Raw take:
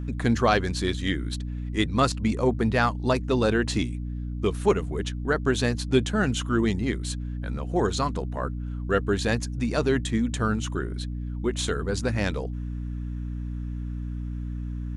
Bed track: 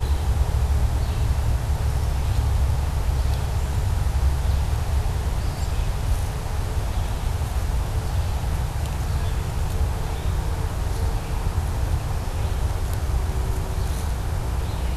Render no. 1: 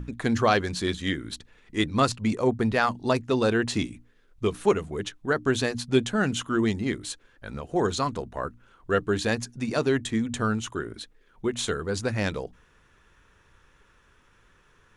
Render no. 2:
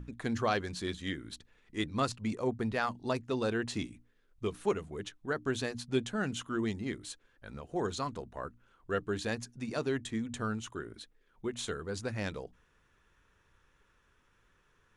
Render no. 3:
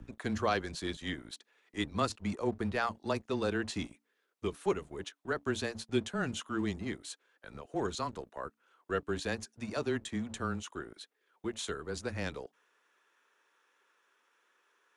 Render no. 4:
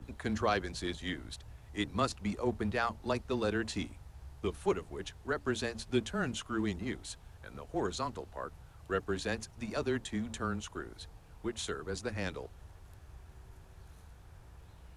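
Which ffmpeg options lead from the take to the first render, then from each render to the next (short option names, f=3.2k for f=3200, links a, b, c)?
-af "bandreject=f=60:t=h:w=6,bandreject=f=120:t=h:w=6,bandreject=f=180:t=h:w=6,bandreject=f=240:t=h:w=6,bandreject=f=300:t=h:w=6"
-af "volume=-9dB"
-filter_complex "[0:a]afreqshift=-15,acrossover=split=340[a][b];[a]aeval=exprs='sgn(val(0))*max(abs(val(0))-0.00316,0)':c=same[c];[c][b]amix=inputs=2:normalize=0"
-filter_complex "[1:a]volume=-29dB[a];[0:a][a]amix=inputs=2:normalize=0"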